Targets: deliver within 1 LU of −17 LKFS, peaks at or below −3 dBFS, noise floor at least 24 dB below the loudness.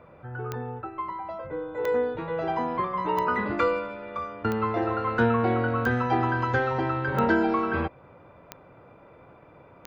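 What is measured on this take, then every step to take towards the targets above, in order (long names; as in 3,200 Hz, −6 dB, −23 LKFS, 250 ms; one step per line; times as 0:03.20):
number of clicks 8; integrated loudness −27.0 LKFS; sample peak −11.0 dBFS; target loudness −17.0 LKFS
→ click removal
level +10 dB
brickwall limiter −3 dBFS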